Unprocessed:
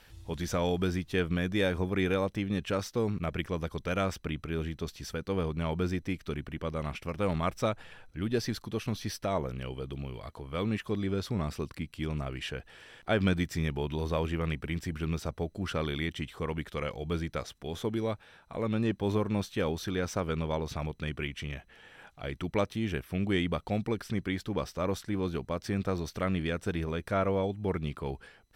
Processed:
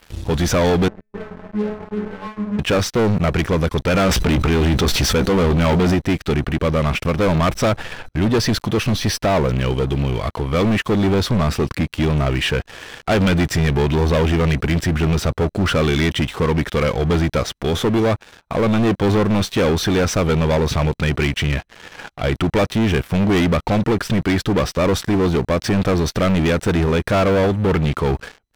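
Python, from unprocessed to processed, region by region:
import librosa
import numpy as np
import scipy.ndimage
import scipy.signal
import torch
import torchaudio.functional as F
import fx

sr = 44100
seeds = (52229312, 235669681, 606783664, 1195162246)

y = fx.chain(x, sr, fx.cheby2_lowpass(hz=5600.0, order=4, stop_db=70),
    fx.low_shelf(hz=89.0, db=8.0),
    fx.stiff_resonator(f0_hz=210.0, decay_s=0.65, stiffness=0.002), at=(0.88, 2.59))
y = fx.chain(y, sr, fx.doubler(ms=16.0, db=-11),
    fx.env_flatten(amount_pct=70), at=(3.94, 5.95))
y = fx.leveller(y, sr, passes=5)
y = fx.high_shelf(y, sr, hz=5400.0, db=-6.0)
y = F.gain(torch.from_numpy(y), 2.5).numpy()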